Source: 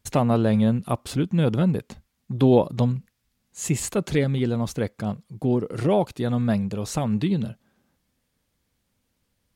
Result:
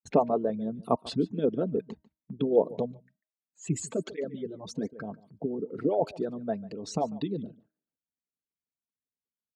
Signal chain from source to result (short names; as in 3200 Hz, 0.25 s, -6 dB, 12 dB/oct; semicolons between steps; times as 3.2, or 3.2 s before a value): formant sharpening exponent 2; gate with hold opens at -43 dBFS; low-pass opened by the level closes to 2600 Hz, open at -16 dBFS; HPF 160 Hz 12 dB/oct; comb 4.5 ms, depth 45%; de-hum 312.6 Hz, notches 6; harmonic-percussive split harmonic -15 dB; echo 0.144 s -20.5 dB; 2.92–4.93 tape flanging out of phase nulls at 1.2 Hz, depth 4.8 ms